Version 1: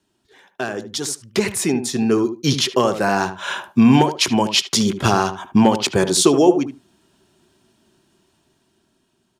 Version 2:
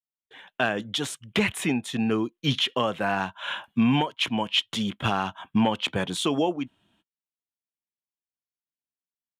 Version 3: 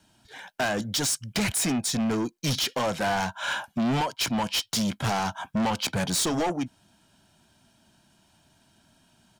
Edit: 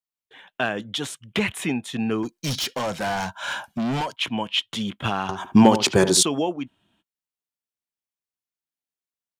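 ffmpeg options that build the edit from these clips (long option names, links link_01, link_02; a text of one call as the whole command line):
ffmpeg -i take0.wav -i take1.wav -i take2.wav -filter_complex "[1:a]asplit=3[link_01][link_02][link_03];[link_01]atrim=end=2.232[link_04];[2:a]atrim=start=2.228:end=4.162[link_05];[link_02]atrim=start=4.158:end=5.292[link_06];[0:a]atrim=start=5.288:end=6.232[link_07];[link_03]atrim=start=6.228[link_08];[link_04][link_05]acrossfade=duration=0.004:curve1=hsin:curve2=hsin[link_09];[link_09][link_06]acrossfade=duration=0.004:curve1=hsin:curve2=hsin[link_10];[link_10][link_07]acrossfade=duration=0.004:curve1=hsin:curve2=hsin[link_11];[link_11][link_08]acrossfade=duration=0.004:curve1=hsin:curve2=hsin" out.wav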